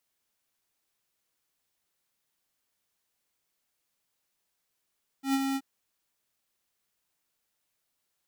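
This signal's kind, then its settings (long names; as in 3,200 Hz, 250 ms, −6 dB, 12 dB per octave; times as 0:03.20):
note with an ADSR envelope square 271 Hz, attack 109 ms, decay 42 ms, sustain −5 dB, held 0.33 s, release 48 ms −24.5 dBFS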